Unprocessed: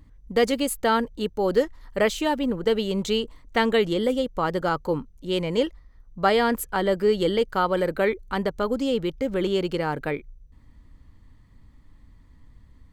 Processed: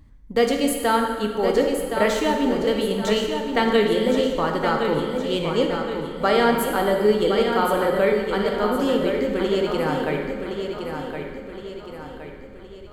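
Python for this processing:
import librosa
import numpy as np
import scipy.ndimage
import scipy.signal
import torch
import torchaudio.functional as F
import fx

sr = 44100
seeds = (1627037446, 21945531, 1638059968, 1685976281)

y = fx.echo_feedback(x, sr, ms=1067, feedback_pct=46, wet_db=-7)
y = fx.rev_plate(y, sr, seeds[0], rt60_s=1.8, hf_ratio=0.75, predelay_ms=0, drr_db=2.0)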